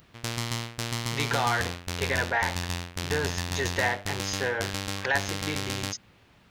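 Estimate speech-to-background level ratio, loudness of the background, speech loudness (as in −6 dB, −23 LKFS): 1.5 dB, −32.0 LKFS, −30.5 LKFS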